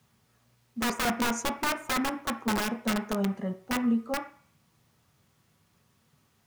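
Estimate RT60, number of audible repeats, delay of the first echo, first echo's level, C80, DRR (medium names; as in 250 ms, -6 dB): 0.50 s, no echo, no echo, no echo, 15.5 dB, 5.5 dB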